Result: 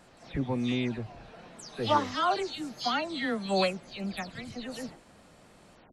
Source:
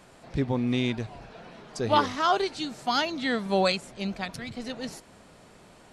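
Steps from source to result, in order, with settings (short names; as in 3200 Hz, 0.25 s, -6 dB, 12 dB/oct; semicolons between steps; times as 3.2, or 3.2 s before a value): spectral delay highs early, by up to 0.171 s; gain -3 dB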